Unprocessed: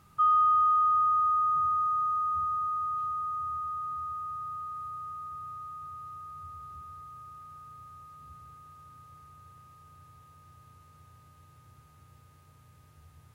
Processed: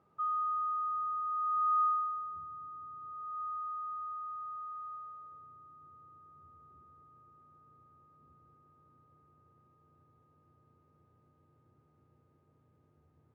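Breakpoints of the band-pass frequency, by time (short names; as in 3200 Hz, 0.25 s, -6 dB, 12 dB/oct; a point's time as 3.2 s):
band-pass, Q 1.5
1.24 s 490 Hz
1.82 s 1200 Hz
2.43 s 310 Hz
2.99 s 310 Hz
3.42 s 810 Hz
4.93 s 810 Hz
5.54 s 340 Hz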